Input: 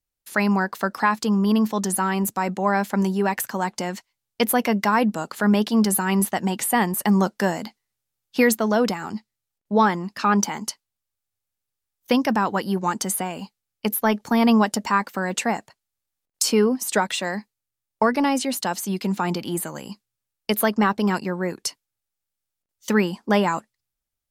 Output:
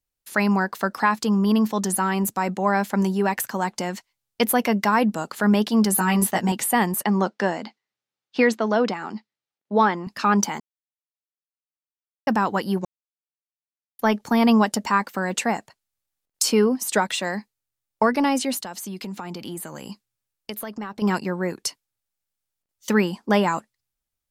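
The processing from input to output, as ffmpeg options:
-filter_complex "[0:a]asettb=1/sr,asplit=3[a][b][c];[a]atrim=end=5.964[d];[b]atrim=start=5.96:end=6.52,asetpts=PTS-STARTPTS,afade=t=in:d=0.004:c=qsin,afade=t=out:st=0.556:d=0.004:c=qsin,asplit=2[e][f];[f]adelay=17,volume=-2dB[g];[e][g]amix=inputs=2:normalize=0,atrim=end_sample=24696[h];[c]atrim=start=6.516[i];[d][h]acrossfade=d=0.004:c1=hsin:c2=qsin[j];[j][i]acrossfade=d=0.004:c1=qsin:c2=hsin,asettb=1/sr,asplit=3[k][l][m];[k]atrim=end=7.034[n];[l]atrim=start=7.03:end=10.07,asetpts=PTS-STARTPTS,afade=t=in:d=0.004:c=qsin,afade=t=out:st=3.036:d=0.004:c=qsin,highpass=210,lowpass=4.4k[o];[m]atrim=start=10.066[p];[n][o]acrossfade=d=0.004:c1=hsin:c2=qsin[q];[q][p]acrossfade=d=0.004:c1=qsin:c2=hsin,asettb=1/sr,asplit=3[r][s][t];[r]atrim=end=18.594[u];[s]atrim=start=18.59:end=21.02,asetpts=PTS-STARTPTS,afade=t=in:d=0.004:c=qsin,afade=t=out:st=2.426:d=0.004:c=qsin,acompressor=threshold=-30dB:ratio=5:attack=3.2:release=140:knee=1:detection=peak[v];[t]atrim=start=21.016[w];[u][v]acrossfade=d=0.004:c1=hsin:c2=qsin[x];[x][w]acrossfade=d=0.004:c1=qsin:c2=hsin,asplit=5[y][z][aa][ab][ac];[y]atrim=end=10.6,asetpts=PTS-STARTPTS,afade=t=out:st=10.596:d=0.004:c=hsin[ad];[z]atrim=start=10.6:end=12.27,asetpts=PTS-STARTPTS,volume=0[ae];[aa]atrim=start=12.27:end=12.85,asetpts=PTS-STARTPTS,afade=t=in:d=0.004:c=hsin,afade=t=out:st=0.576:d=0.004:c=hsin[af];[ab]atrim=start=12.85:end=13.99,asetpts=PTS-STARTPTS,volume=0[ag];[ac]atrim=start=13.99,asetpts=PTS-STARTPTS,afade=t=in:d=0.004:c=hsin[ah];[ad][ae][af][ag][ah]concat=n=5:v=0:a=1"

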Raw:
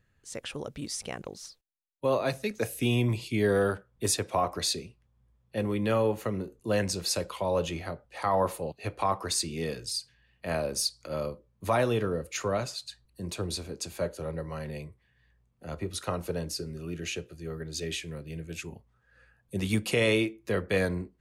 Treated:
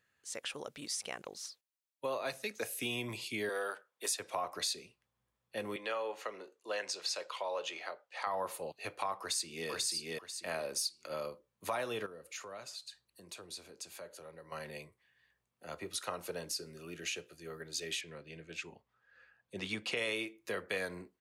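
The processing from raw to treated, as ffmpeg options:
-filter_complex "[0:a]asettb=1/sr,asplit=3[a][b][c];[a]atrim=end=3.494[d];[b]atrim=start=3.49:end=4.2,asetpts=PTS-STARTPTS,afade=t=in:d=0.004:c=qsin,afade=t=out:st=0.706:d=0.004:c=qsin,highpass=460[e];[c]atrim=start=4.196[f];[d][e]acrossfade=d=0.004:c1=hsin:c2=qsin[g];[g][f]acrossfade=d=0.004:c1=qsin:c2=hsin,asettb=1/sr,asplit=3[h][i][j];[h]atrim=end=5.764[k];[i]atrim=start=5.76:end=8.27,asetpts=PTS-STARTPTS,afade=t=in:d=0.004:c=qsin,afade=t=out:st=2.506:d=0.004:c=qsin,acrossover=split=360 7200:gain=0.0708 1 0.141[l][m][n];[l][m][n]amix=inputs=3:normalize=0[o];[j]atrim=start=8.266[p];[k][o]acrossfade=d=0.004:c1=hsin:c2=qsin[q];[q][p]acrossfade=d=0.004:c1=qsin:c2=hsin,asplit=2[r][s];[s]afade=t=in:st=9.2:d=0.01,afade=t=out:st=9.69:d=0.01,aecho=0:1:490|980|1470:0.944061|0.188812|0.0377624[t];[r][t]amix=inputs=2:normalize=0,asettb=1/sr,asplit=3[u][v][w];[u]atrim=end=12.064[x];[v]atrim=start=12.06:end=14.52,asetpts=PTS-STARTPTS,afade=t=in:d=0.004:c=qsin,afade=t=out:st=2.456:d=0.004:c=qsin,acompressor=threshold=-48dB:ratio=2:attack=3.2:release=140:knee=1:detection=peak[y];[w]atrim=start=14.516[z];[x][y]acrossfade=d=0.004:c1=hsin:c2=qsin[aa];[aa][z]acrossfade=d=0.004:c1=qsin:c2=hsin,asettb=1/sr,asplit=3[ab][ac][ad];[ab]atrim=end=18.014[ae];[ac]atrim=start=18.01:end=19.97,asetpts=PTS-STARTPTS,afade=t=in:d=0.004:c=qsin,afade=t=out:st=1.956:d=0.004:c=qsin,lowpass=4.8k[af];[ad]atrim=start=19.966[ag];[ae][af]acrossfade=d=0.004:c1=hsin:c2=qsin[ah];[ah][ag]acrossfade=d=0.004:c1=qsin:c2=hsin,highpass=f=870:p=1,acompressor=threshold=-35dB:ratio=2.5"

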